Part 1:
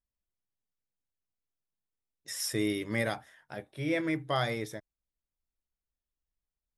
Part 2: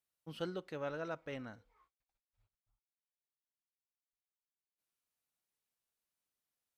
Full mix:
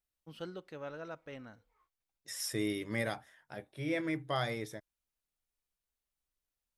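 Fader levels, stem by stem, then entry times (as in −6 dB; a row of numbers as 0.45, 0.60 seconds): −4.0, −3.0 decibels; 0.00, 0.00 seconds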